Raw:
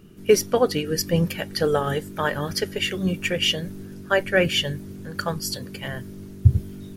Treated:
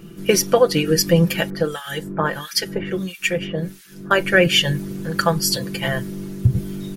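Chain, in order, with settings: bass shelf 160 Hz -3.5 dB; comb 5.9 ms; compression 2:1, threshold -22 dBFS, peak gain reduction 6.5 dB; 1.50–4.11 s: harmonic tremolo 1.5 Hz, depth 100%, crossover 1.5 kHz; trim +8 dB

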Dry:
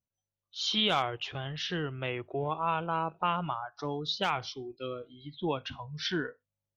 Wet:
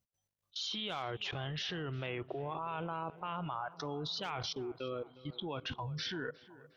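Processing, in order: level held to a coarse grid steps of 23 dB; on a send: tape echo 358 ms, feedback 69%, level -17 dB, low-pass 2.1 kHz; on the sum: trim +7 dB

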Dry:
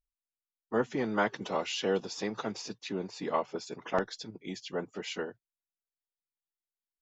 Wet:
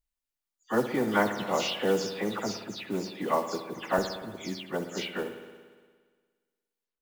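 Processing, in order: delay that grows with frequency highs early, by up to 159 ms; spring tank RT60 1.6 s, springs 58 ms, chirp 55 ms, DRR 8.5 dB; modulation noise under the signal 23 dB; trim +3.5 dB

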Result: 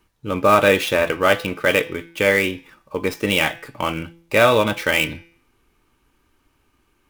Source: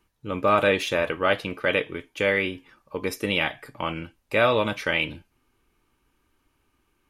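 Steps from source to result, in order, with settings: dead-time distortion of 0.052 ms; de-hum 168.1 Hz, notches 35; trim +6 dB

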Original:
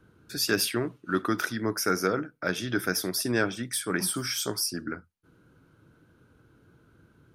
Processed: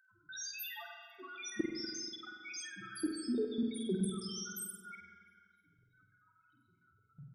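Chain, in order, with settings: random holes in the spectrogram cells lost 82%; high-pass 73 Hz 12 dB/octave; de-hum 411.1 Hz, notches 36; loudest bins only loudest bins 1; level held to a coarse grid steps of 23 dB; treble shelf 3.1 kHz +8.5 dB; gain riding within 3 dB 0.5 s; on a send: flutter echo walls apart 8.4 m, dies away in 0.42 s; on the sum: spring tank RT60 2 s, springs 40/48 ms, chirp 45 ms, DRR 2.5 dB; trim +16 dB

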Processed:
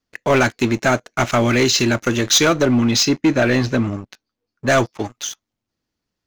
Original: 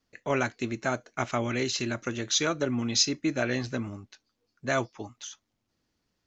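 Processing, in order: waveshaping leveller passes 3; 2.65–4.68 s: treble shelf 5 kHz -8 dB; trim +3.5 dB

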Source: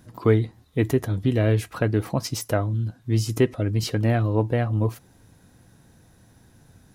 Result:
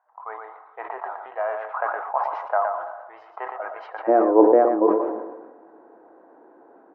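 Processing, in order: elliptic high-pass 760 Hz, stop band 70 dB, from 4.07 s 330 Hz; delay 116 ms -8.5 dB; level rider gain up to 13 dB; low-pass 1.1 kHz 24 dB/octave; plate-style reverb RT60 2.4 s, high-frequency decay 0.8×, DRR 16 dB; decay stretcher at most 48 dB/s

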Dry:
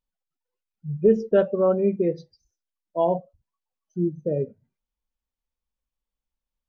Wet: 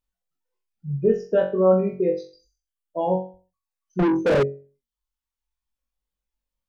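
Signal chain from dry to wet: reverb removal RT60 1 s; in parallel at +2.5 dB: peak limiter -17.5 dBFS, peak gain reduction 9.5 dB; on the sum: flutter echo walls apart 3.7 m, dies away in 0.38 s; 3.99–4.43 s: overdrive pedal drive 35 dB, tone 1.7 kHz, clips at -5.5 dBFS; trim -6.5 dB

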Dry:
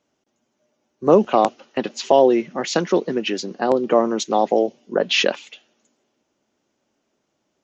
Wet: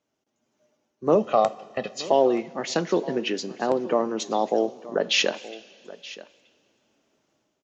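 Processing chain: 1.15–2.07 s: comb 1.6 ms, depth 75%; 4.26–5.22 s: treble shelf 5 kHz +9.5 dB; level rider gain up to 9.5 dB; Chebyshev shaper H 3 -39 dB, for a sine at -0.5 dBFS; delay 925 ms -18 dB; two-slope reverb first 0.21 s, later 2.5 s, from -18 dB, DRR 12 dB; trim -7.5 dB

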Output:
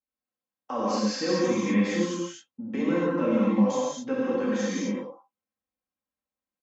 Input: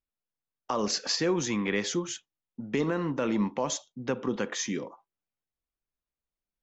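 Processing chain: high-pass 110 Hz 12 dB/octave; treble shelf 2.3 kHz -10 dB; comb 3.8 ms, depth 75%; gated-style reverb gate 280 ms flat, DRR -7.5 dB; 4.22–4.81 s: crackle 150 per s -54 dBFS; trim -5.5 dB

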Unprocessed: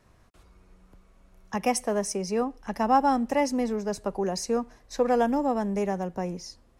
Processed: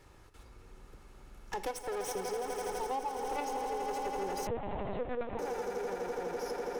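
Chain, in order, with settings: comb filter that takes the minimum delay 2.3 ms; 2.26–3.14 s: spectral replace 1.2–2.7 kHz; in parallel at +2 dB: level held to a coarse grid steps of 23 dB; on the sum: echo with a slow build-up 83 ms, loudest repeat 8, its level -11.5 dB; compression 6:1, threshold -33 dBFS, peak gain reduction 18.5 dB; saturation -27 dBFS, distortion -20 dB; on a send at -14.5 dB: reverberation, pre-delay 38 ms; 4.47–5.39 s: on the sum: LPC vocoder at 8 kHz pitch kept

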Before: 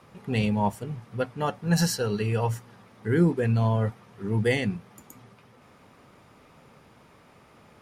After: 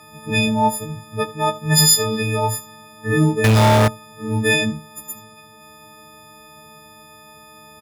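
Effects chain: partials quantised in pitch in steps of 6 st; early reflections 15 ms -11.5 dB, 77 ms -18 dB; 3.44–3.88 s: power-law waveshaper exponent 0.35; trim +5 dB

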